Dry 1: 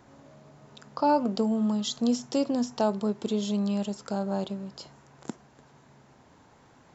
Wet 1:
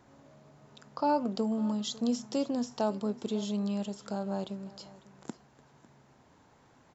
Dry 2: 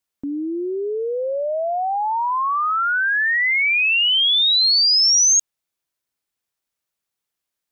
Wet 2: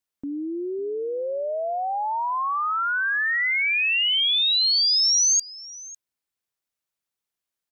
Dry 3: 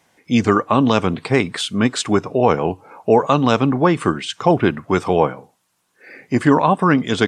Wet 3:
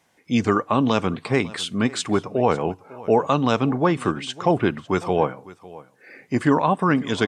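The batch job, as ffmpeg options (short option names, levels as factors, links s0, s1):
-af "aecho=1:1:551:0.1,volume=0.596"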